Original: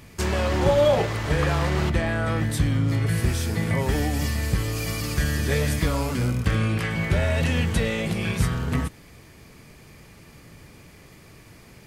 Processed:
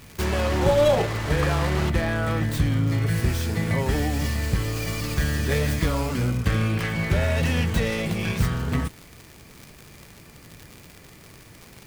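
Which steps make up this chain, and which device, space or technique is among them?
record under a worn stylus (tracing distortion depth 0.12 ms; crackle 110 per s -31 dBFS; white noise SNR 35 dB)

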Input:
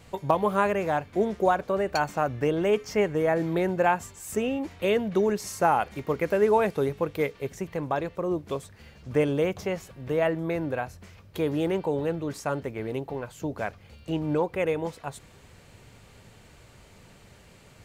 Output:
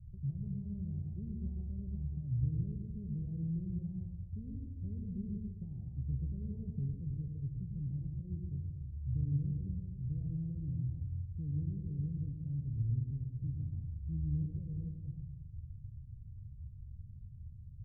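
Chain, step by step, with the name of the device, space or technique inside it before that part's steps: club heard from the street (peak limiter -16 dBFS, peak gain reduction 8 dB; low-pass 120 Hz 24 dB/octave; reverberation RT60 1.1 s, pre-delay 88 ms, DRR 0.5 dB); trim +5.5 dB

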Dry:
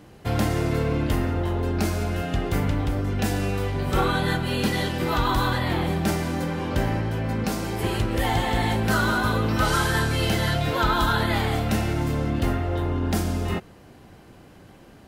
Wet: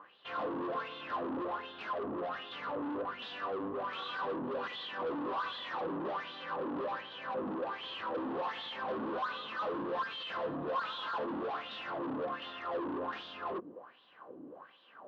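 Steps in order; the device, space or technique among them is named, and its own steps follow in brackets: wah-wah guitar rig (wah-wah 1.3 Hz 280–3600 Hz, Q 5.4; valve stage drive 46 dB, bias 0.3; cabinet simulation 110–3600 Hz, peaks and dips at 110 Hz -6 dB, 260 Hz +3 dB, 520 Hz +7 dB, 1.1 kHz +10 dB, 2.2 kHz -9 dB); trim +8 dB

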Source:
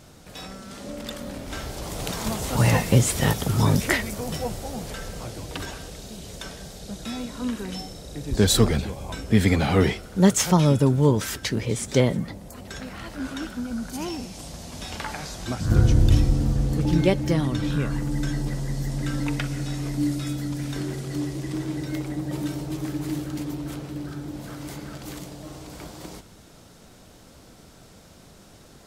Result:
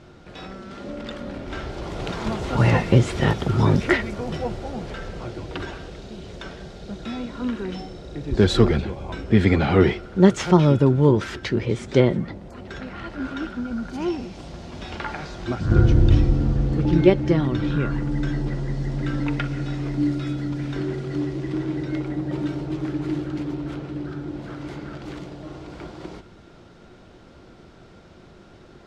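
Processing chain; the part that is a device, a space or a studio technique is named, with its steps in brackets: inside a cardboard box (low-pass 3.3 kHz 12 dB/octave; small resonant body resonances 360/1400 Hz, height 10 dB, ringing for 90 ms); trim +1.5 dB

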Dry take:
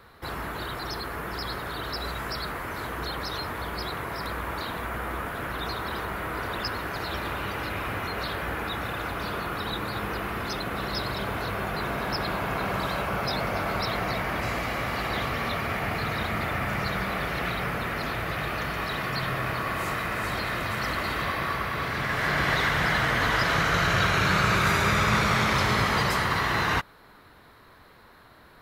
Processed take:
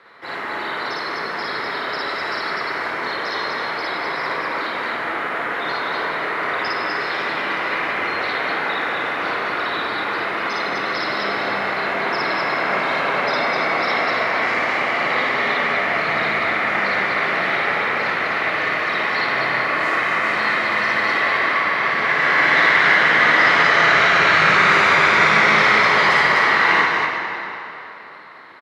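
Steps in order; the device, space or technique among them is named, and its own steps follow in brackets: station announcement (band-pass 320–4800 Hz; peaking EQ 2 kHz +7.5 dB 0.39 oct; loudspeakers at several distances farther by 19 m 0 dB, 86 m -2 dB; reverberation RT60 3.5 s, pre-delay 17 ms, DRR 1.5 dB); trim +2 dB

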